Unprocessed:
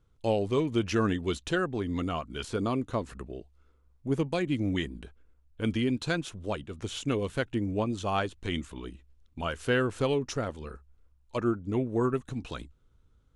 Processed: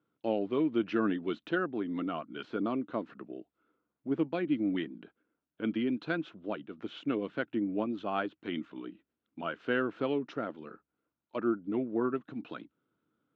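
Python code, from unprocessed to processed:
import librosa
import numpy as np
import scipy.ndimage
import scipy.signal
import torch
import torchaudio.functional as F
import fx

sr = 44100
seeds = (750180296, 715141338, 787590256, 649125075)

y = fx.cabinet(x, sr, low_hz=160.0, low_slope=24, high_hz=3500.0, hz=(220.0, 310.0, 650.0, 1400.0), db=(3, 9, 4, 6))
y = y * 10.0 ** (-6.5 / 20.0)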